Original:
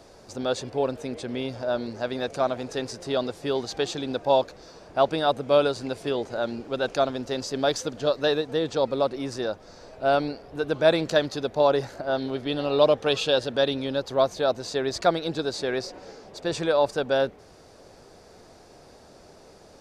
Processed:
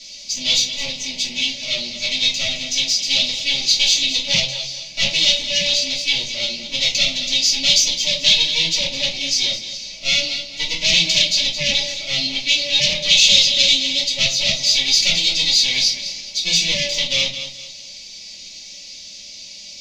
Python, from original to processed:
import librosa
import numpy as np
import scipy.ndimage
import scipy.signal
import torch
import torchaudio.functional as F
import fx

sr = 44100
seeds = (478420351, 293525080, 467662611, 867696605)

p1 = fx.lower_of_two(x, sr, delay_ms=3.5)
p2 = fx.riaa(p1, sr, side='recording')
p3 = p2 + fx.echo_feedback(p2, sr, ms=215, feedback_pct=31, wet_db=-13.0, dry=0)
p4 = fx.room_shoebox(p3, sr, seeds[0], volume_m3=160.0, walls='furnished', distance_m=2.9)
p5 = fx.fold_sine(p4, sr, drive_db=10, ceiling_db=-3.5)
p6 = p4 + (p5 * 10.0 ** (-4.0 / 20.0))
p7 = fx.curve_eq(p6, sr, hz=(120.0, 200.0, 290.0, 460.0, 920.0, 1500.0, 2200.0, 3500.0, 6500.0, 9200.0), db=(0, 7, -16, -13, -20, -29, 5, 9, 7, -21))
y = p7 * 10.0 ** (-8.5 / 20.0)